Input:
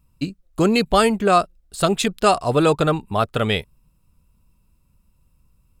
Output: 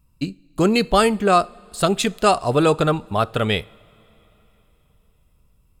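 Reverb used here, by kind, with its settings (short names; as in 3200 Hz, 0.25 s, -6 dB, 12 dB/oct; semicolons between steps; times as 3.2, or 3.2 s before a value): two-slope reverb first 0.41 s, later 4 s, from -18 dB, DRR 19.5 dB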